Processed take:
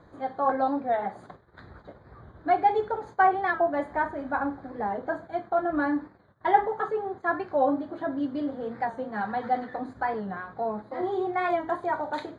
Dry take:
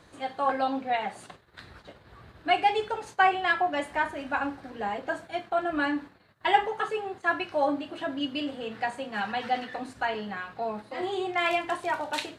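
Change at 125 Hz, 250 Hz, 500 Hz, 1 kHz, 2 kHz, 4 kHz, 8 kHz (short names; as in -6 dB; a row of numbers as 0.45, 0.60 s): +3.5 dB, +3.0 dB, +2.5 dB, +1.5 dB, -3.5 dB, under -15 dB, n/a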